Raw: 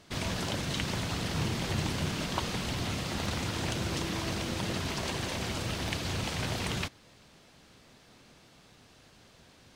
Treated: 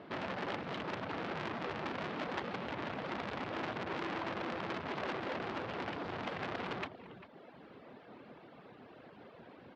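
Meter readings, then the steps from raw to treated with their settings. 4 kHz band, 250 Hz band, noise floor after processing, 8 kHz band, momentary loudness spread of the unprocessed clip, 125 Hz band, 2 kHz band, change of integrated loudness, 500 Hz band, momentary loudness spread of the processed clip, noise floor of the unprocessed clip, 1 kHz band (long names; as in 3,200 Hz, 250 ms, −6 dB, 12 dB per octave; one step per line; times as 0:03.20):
−12.5 dB, −6.5 dB, −57 dBFS, −26.0 dB, 2 LU, −14.5 dB, −4.0 dB, −7.0 dB, −2.0 dB, 17 LU, −59 dBFS, −1.0 dB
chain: reverb reduction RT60 1 s
high-pass filter 360 Hz 12 dB per octave
spectral tilt −3 dB per octave
in parallel at −2 dB: downward compressor, threshold −47 dBFS, peak gain reduction 18.5 dB
on the sum: hard clipping −28 dBFS, distortion −18 dB
high-frequency loss of the air 420 metres
on a send: single-tap delay 396 ms −17.5 dB
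on the sum: saturating transformer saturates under 2,000 Hz
level +5 dB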